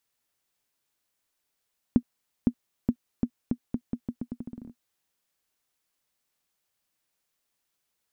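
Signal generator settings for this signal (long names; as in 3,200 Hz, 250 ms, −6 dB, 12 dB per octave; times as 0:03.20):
bouncing ball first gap 0.51 s, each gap 0.82, 241 Hz, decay 69 ms −8.5 dBFS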